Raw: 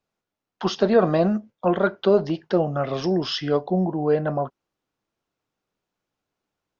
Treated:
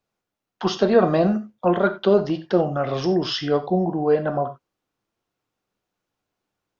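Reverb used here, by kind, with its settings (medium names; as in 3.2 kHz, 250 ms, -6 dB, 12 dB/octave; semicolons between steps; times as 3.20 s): gated-style reverb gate 110 ms flat, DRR 9.5 dB; trim +1 dB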